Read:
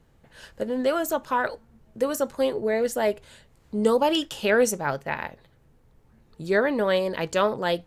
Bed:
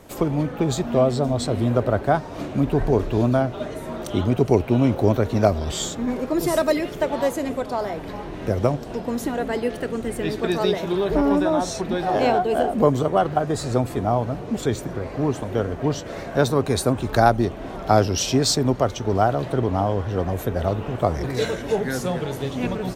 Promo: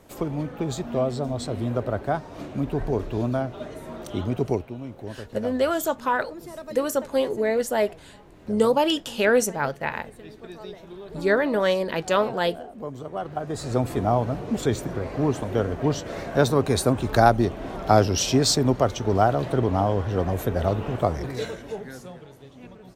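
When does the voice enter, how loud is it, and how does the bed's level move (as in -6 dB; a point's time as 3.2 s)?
4.75 s, +1.0 dB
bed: 4.51 s -6 dB
4.76 s -18 dB
12.81 s -18 dB
13.89 s -0.5 dB
20.95 s -0.5 dB
22.36 s -19.5 dB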